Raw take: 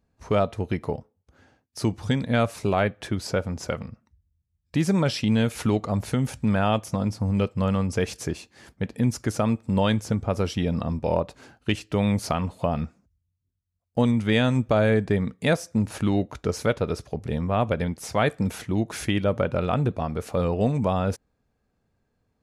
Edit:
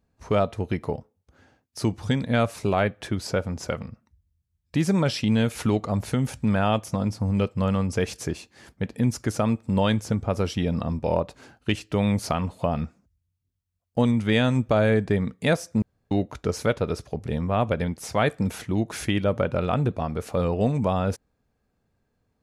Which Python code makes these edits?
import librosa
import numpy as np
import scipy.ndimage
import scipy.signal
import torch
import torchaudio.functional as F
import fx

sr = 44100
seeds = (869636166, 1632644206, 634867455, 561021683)

y = fx.edit(x, sr, fx.room_tone_fill(start_s=15.82, length_s=0.29), tone=tone)